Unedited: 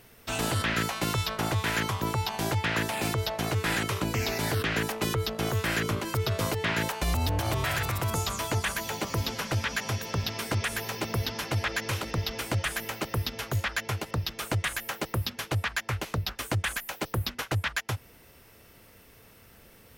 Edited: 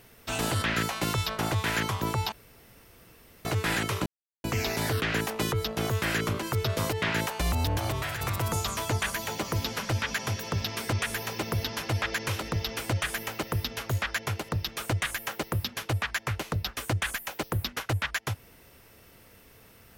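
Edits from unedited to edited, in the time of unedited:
2.32–3.45 s: room tone
4.06 s: insert silence 0.38 s
7.36–7.83 s: fade out, to -6.5 dB

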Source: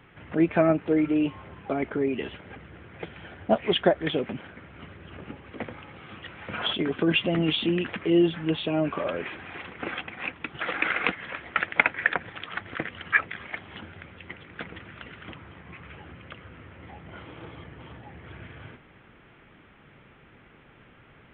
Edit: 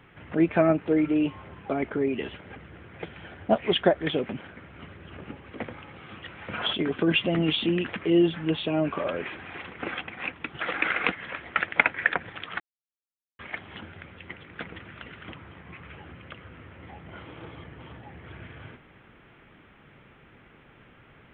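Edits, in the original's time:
12.60–13.39 s: mute

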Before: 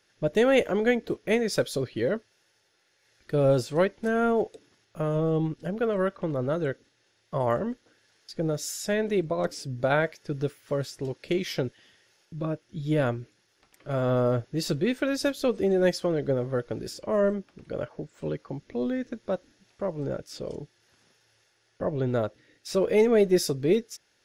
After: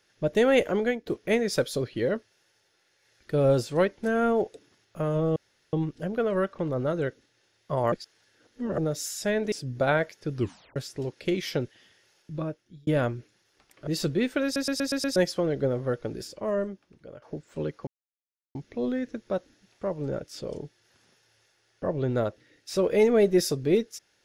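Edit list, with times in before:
0.78–1.06 s: fade out, to -15.5 dB
5.36 s: insert room tone 0.37 s
7.55–8.41 s: reverse
9.15–9.55 s: delete
10.38 s: tape stop 0.41 s
12.38–12.90 s: fade out linear
13.90–14.53 s: delete
15.10 s: stutter in place 0.12 s, 6 plays
16.67–17.88 s: fade out, to -16 dB
18.53 s: insert silence 0.68 s

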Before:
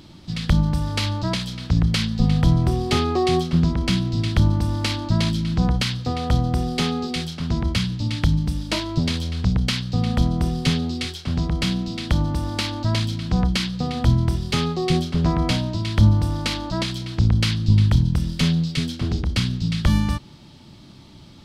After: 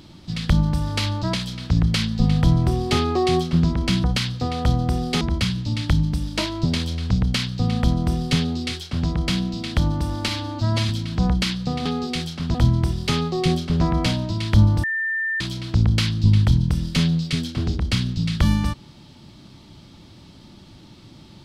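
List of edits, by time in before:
4.04–5.69 s: delete
6.86–7.55 s: move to 13.99 s
12.62–13.03 s: stretch 1.5×
16.28–16.85 s: bleep 1.79 kHz -21 dBFS

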